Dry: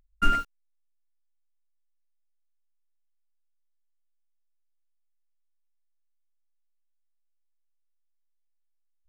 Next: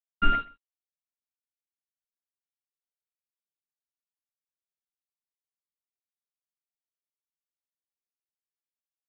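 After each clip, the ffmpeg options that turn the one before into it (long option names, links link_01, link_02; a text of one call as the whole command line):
ffmpeg -i in.wav -af "aresample=8000,aeval=exprs='sgn(val(0))*max(abs(val(0))-0.00224,0)':channel_layout=same,aresample=44100,aecho=1:1:128:0.0668" out.wav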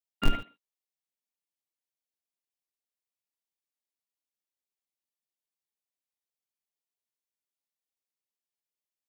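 ffmpeg -i in.wav -filter_complex "[0:a]equalizer=frequency=1400:width_type=o:width=0.48:gain=-11.5,acrossover=split=150[link_01][link_02];[link_01]acrusher=bits=5:dc=4:mix=0:aa=0.000001[link_03];[link_03][link_02]amix=inputs=2:normalize=0" out.wav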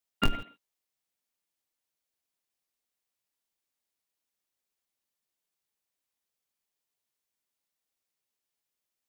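ffmpeg -i in.wav -af "acompressor=threshold=-27dB:ratio=6,volume=6dB" out.wav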